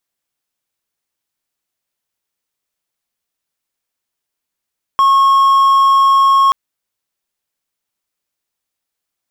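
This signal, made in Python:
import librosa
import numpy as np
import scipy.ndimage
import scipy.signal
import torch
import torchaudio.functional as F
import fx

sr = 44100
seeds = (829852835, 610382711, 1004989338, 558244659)

y = 10.0 ** (-5.0 / 20.0) * (1.0 - 4.0 * np.abs(np.mod(1090.0 * (np.arange(round(1.53 * sr)) / sr) + 0.25, 1.0) - 0.5))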